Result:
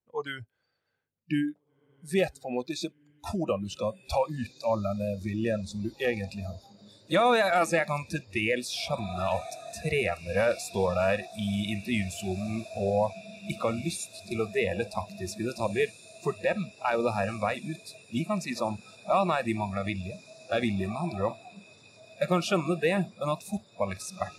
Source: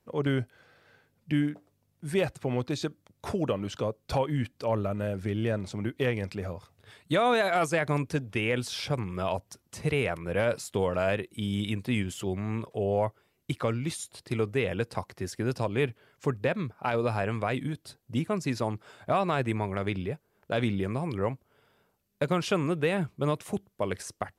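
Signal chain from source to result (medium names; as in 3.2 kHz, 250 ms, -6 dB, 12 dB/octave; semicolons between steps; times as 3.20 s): echo that smears into a reverb 1939 ms, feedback 71%, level -12 dB; spectral noise reduction 22 dB; trim +2 dB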